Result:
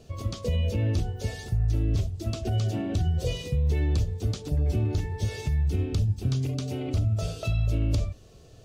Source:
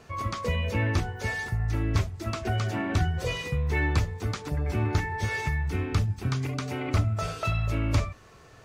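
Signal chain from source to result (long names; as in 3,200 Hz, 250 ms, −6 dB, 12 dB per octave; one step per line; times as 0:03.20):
low-shelf EQ 95 Hz +7.5 dB
brickwall limiter −17 dBFS, peak gain reduction 7.5 dB
flat-topped bell 1,400 Hz −13.5 dB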